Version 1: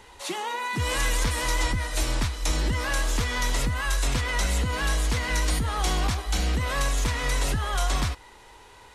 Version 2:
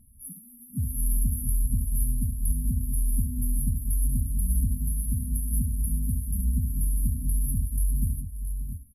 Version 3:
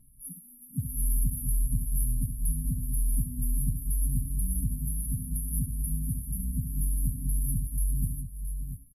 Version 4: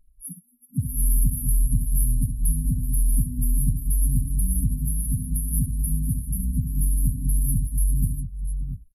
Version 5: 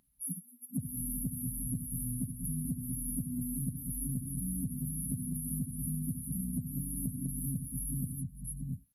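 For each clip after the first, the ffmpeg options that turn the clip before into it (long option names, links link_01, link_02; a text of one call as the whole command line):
ffmpeg -i in.wav -af "equalizer=frequency=11000:width_type=o:width=1:gain=8,afftfilt=real='re*(1-between(b*sr/4096,270,10000))':imag='im*(1-between(b*sr/4096,270,10000))':win_size=4096:overlap=0.75,aecho=1:1:69|395|585|670|693:0.376|0.106|0.126|0.188|0.266" out.wav
ffmpeg -i in.wav -af "aecho=1:1:6.7:0.77,volume=-3dB" out.wav
ffmpeg -i in.wav -af "afftdn=noise_reduction=24:noise_floor=-40,volume=6.5dB" out.wav
ffmpeg -i in.wav -filter_complex "[0:a]acrossover=split=3200[link_01][link_02];[link_02]acompressor=threshold=-39dB:ratio=4:attack=1:release=60[link_03];[link_01][link_03]amix=inputs=2:normalize=0,highpass=190,acompressor=threshold=-38dB:ratio=6,volume=5.5dB" out.wav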